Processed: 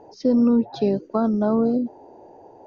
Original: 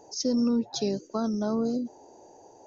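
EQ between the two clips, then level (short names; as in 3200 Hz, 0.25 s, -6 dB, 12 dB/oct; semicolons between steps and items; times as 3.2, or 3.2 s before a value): air absorption 450 m; dynamic EQ 770 Hz, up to +3 dB, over -40 dBFS, Q 0.97; high shelf 5100 Hz +4 dB; +7.5 dB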